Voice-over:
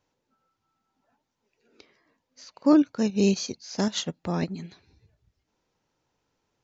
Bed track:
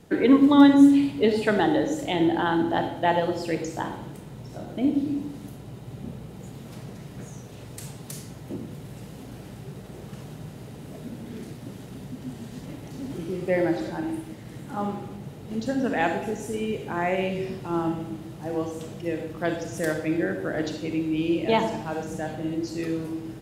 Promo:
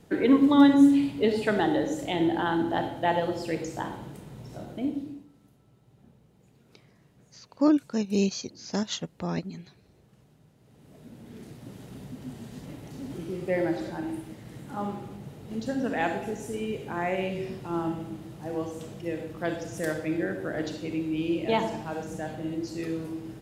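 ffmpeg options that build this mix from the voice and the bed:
-filter_complex "[0:a]adelay=4950,volume=0.708[s0];[1:a]volume=5.01,afade=t=out:st=4.62:d=0.64:silence=0.133352,afade=t=in:st=10.6:d=1.33:silence=0.141254[s1];[s0][s1]amix=inputs=2:normalize=0"

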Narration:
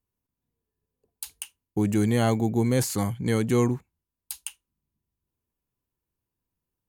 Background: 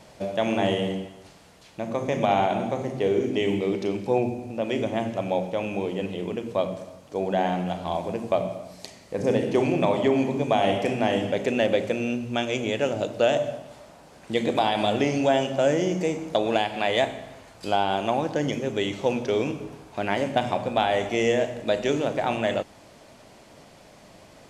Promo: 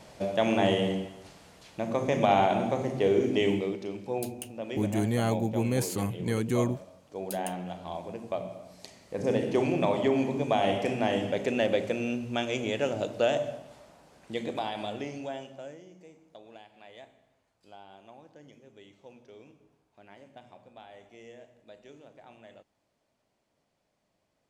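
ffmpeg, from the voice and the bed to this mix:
-filter_complex "[0:a]adelay=3000,volume=0.562[s0];[1:a]volume=1.68,afade=t=out:st=3.47:d=0.3:silence=0.375837,afade=t=in:st=8.44:d=0.95:silence=0.530884,afade=t=out:st=13.09:d=2.74:silence=0.0707946[s1];[s0][s1]amix=inputs=2:normalize=0"

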